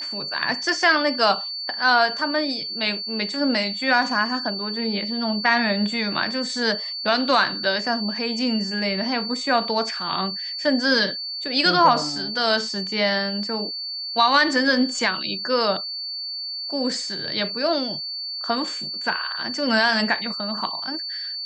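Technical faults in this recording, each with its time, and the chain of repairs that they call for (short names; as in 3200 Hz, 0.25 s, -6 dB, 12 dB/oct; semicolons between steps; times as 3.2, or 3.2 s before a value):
tone 4500 Hz -28 dBFS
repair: notch 4500 Hz, Q 30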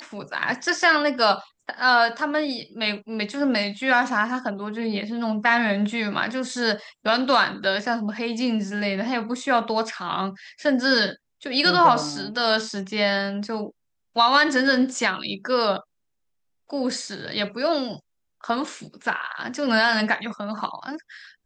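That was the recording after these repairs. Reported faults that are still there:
none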